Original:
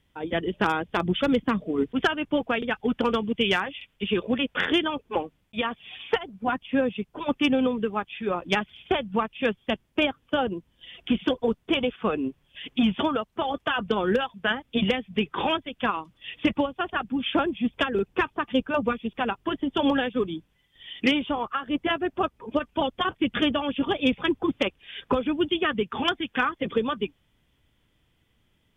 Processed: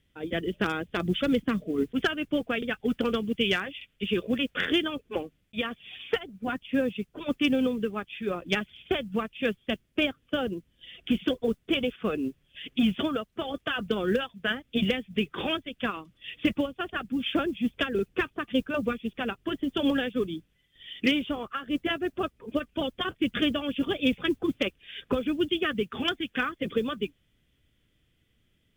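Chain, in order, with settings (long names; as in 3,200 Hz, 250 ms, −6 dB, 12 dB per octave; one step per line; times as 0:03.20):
parametric band 910 Hz −12.5 dB 0.62 octaves
noise that follows the level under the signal 34 dB
level −1.5 dB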